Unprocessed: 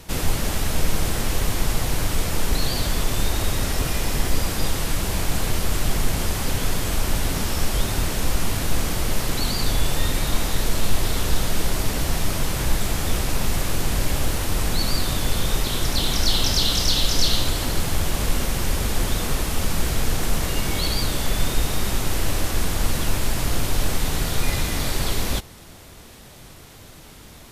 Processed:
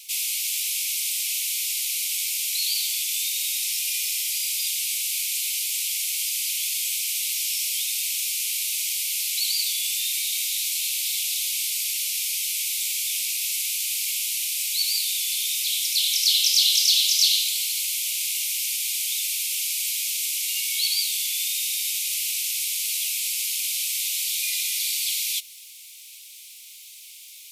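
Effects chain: treble shelf 6.1 kHz +6.5 dB; word length cut 10-bit, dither triangular; steep high-pass 2.2 kHz 96 dB/octave; trim +1.5 dB

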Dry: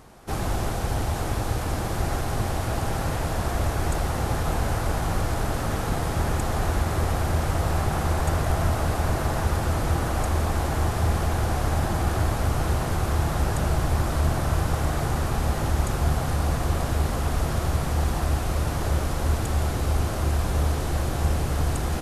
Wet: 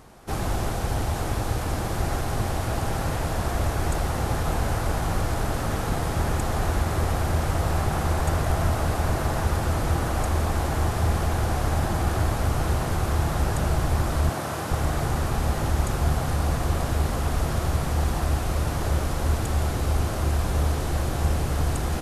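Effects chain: 14.30–14.71 s: Bessel high-pass 210 Hz, order 2

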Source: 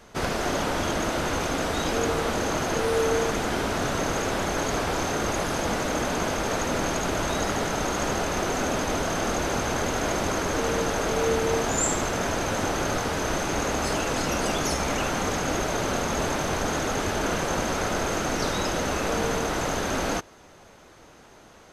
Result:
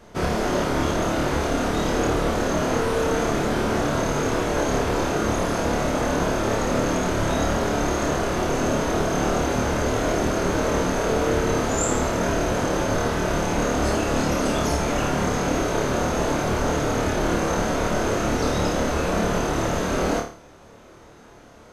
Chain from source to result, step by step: tilt shelf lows +3.5 dB, about 1.1 kHz; band-stop 800 Hz, Q 22; on a send: flutter echo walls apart 4.7 m, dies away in 0.42 s

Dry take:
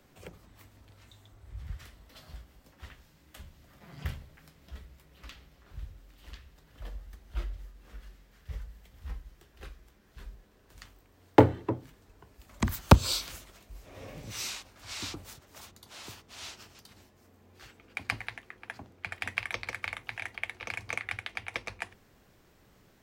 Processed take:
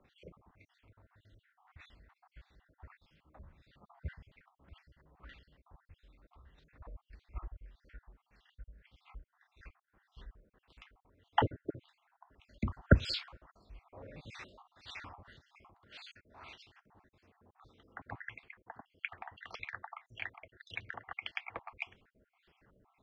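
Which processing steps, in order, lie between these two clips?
random holes in the spectrogram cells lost 53%; LFO low-pass sine 1.7 Hz 900–3800 Hz; trim -5.5 dB

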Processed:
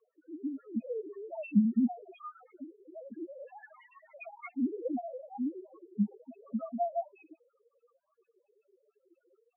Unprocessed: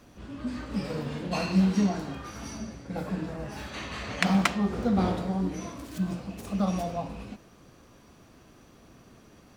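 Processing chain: formants replaced by sine waves; loudest bins only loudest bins 2; rotary cabinet horn 0.75 Hz, later 5.5 Hz, at 3.67 s; trim -2 dB

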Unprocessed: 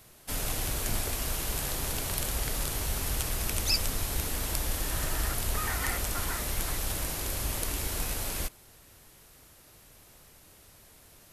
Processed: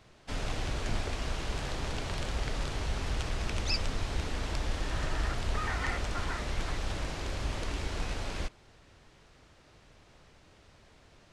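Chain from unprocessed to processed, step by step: Gaussian low-pass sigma 1.6 samples

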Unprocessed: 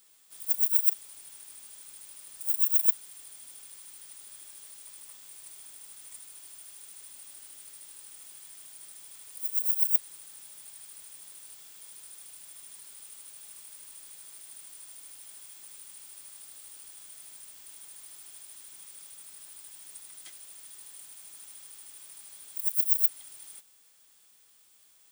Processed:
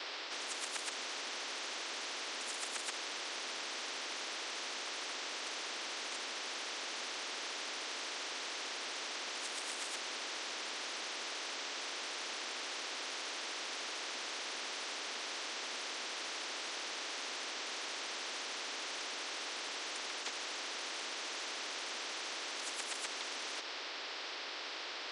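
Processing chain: mistuned SSB +120 Hz 280–3300 Hz; wow and flutter 16 cents; spectrum-flattening compressor 10:1; trim +16 dB

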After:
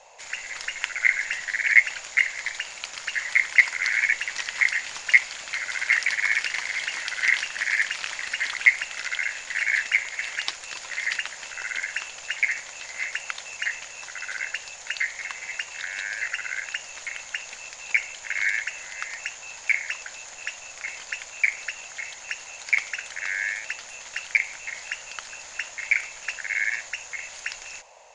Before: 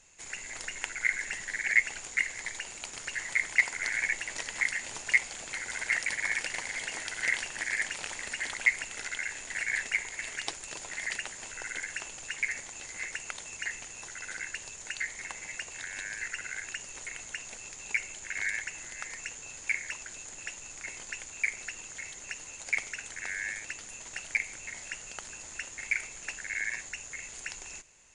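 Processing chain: high-order bell 2.5 kHz +13.5 dB 2.9 oct; band noise 500–1000 Hz -48 dBFS; trim -5.5 dB

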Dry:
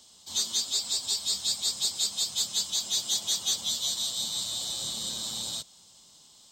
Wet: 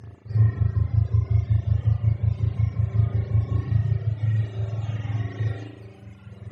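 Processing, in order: spectrum inverted on a logarithmic axis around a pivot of 650 Hz; reverse; upward compressor, threshold -26 dBFS; reverse; Chebyshev band-pass 150–9600 Hz, order 2; on a send: flutter echo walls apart 6.7 m, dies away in 0.22 s; on the sum: spring tank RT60 1.9 s, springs 36 ms, chirp 30 ms, DRR -7 dB; reverb removal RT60 1.6 s; trim +5 dB

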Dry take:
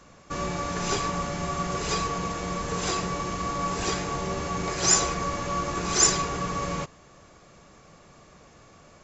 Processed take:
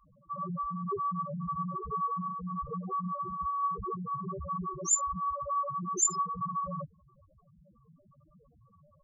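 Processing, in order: 1.77–3.20 s: hum notches 50/100/150/200/250/300/350/400/450 Hz; loudest bins only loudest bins 2; trim +1 dB

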